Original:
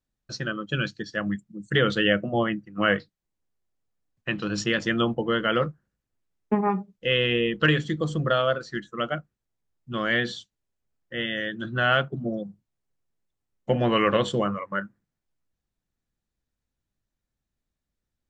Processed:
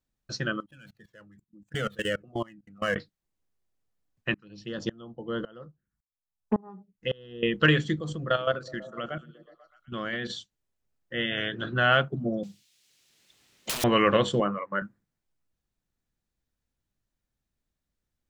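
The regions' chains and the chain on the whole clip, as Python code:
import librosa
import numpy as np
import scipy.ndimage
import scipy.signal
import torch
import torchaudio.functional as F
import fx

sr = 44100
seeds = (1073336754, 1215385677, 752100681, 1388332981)

y = fx.chain(x, sr, fx.median_filter(points=9),
    fx.level_steps(step_db=23),
    fx.comb_cascade(direction='falling', hz=1.1), at=(0.6, 2.96))
y = fx.chain(y, sr, fx.env_phaser(low_hz=340.0, high_hz=2300.0, full_db=-22.0),
    fx.tremolo_decay(direction='swelling', hz=1.8, depth_db=28), at=(4.34, 7.43))
y = fx.chain(y, sr, fx.level_steps(step_db=11),
    fx.echo_stepped(ms=123, hz=160.0, octaves=0.7, feedback_pct=70, wet_db=-10.5), at=(7.99, 10.3))
y = fx.spec_clip(y, sr, under_db=16, at=(11.3, 11.73), fade=0.02)
y = fx.lowpass(y, sr, hz=3800.0, slope=12, at=(11.3, 11.73), fade=0.02)
y = fx.chain(y, sr, fx.weighting(curve='D'),
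    fx.overflow_wrap(gain_db=24.0),
    fx.band_squash(depth_pct=70), at=(12.43, 13.84))
y = fx.chain(y, sr, fx.highpass(hz=190.0, slope=12),
    fx.high_shelf(hz=4000.0, db=-10.5), at=(14.4, 14.82))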